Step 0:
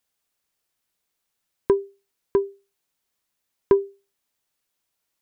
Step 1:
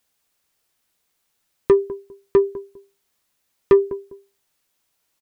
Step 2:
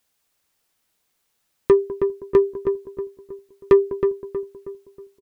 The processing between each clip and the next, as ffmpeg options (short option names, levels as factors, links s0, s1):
-filter_complex "[0:a]asplit=2[s0][s1];[s1]adelay=201,lowpass=f=820:p=1,volume=0.126,asplit=2[s2][s3];[s3]adelay=201,lowpass=f=820:p=1,volume=0.24[s4];[s0][s2][s4]amix=inputs=3:normalize=0,asoftclip=type=tanh:threshold=0.211,asplit=2[s5][s6];[s6]adelay=13,volume=0.251[s7];[s5][s7]amix=inputs=2:normalize=0,volume=2.11"
-filter_complex "[0:a]asplit=2[s0][s1];[s1]adelay=318,lowpass=f=1600:p=1,volume=0.473,asplit=2[s2][s3];[s3]adelay=318,lowpass=f=1600:p=1,volume=0.44,asplit=2[s4][s5];[s5]adelay=318,lowpass=f=1600:p=1,volume=0.44,asplit=2[s6][s7];[s7]adelay=318,lowpass=f=1600:p=1,volume=0.44,asplit=2[s8][s9];[s9]adelay=318,lowpass=f=1600:p=1,volume=0.44[s10];[s0][s2][s4][s6][s8][s10]amix=inputs=6:normalize=0"